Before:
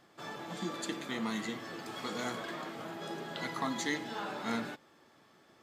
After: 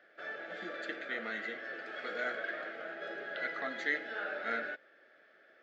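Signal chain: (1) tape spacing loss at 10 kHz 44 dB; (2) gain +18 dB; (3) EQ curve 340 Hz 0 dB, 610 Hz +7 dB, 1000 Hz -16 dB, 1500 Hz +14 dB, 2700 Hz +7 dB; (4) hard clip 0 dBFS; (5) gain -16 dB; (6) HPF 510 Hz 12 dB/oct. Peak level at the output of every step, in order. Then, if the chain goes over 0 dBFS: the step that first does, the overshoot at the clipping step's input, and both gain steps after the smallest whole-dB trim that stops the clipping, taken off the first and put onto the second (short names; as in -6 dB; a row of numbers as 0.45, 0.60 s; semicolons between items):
-24.0, -6.0, -2.0, -2.0, -18.0, -20.0 dBFS; no overload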